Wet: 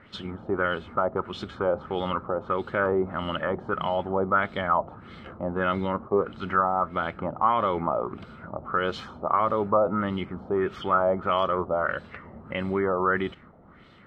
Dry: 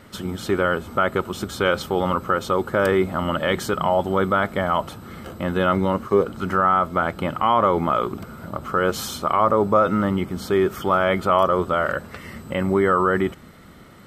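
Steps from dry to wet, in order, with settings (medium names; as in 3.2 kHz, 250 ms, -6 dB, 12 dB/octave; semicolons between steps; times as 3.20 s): LFO low-pass sine 1.6 Hz 720–3800 Hz; trim -7.5 dB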